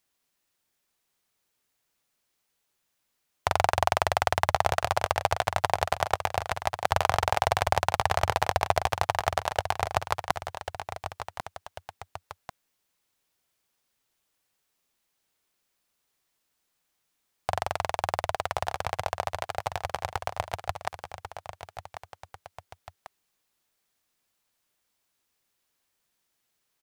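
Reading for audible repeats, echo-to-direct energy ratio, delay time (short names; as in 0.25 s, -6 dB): 2, -8.5 dB, 1.093 s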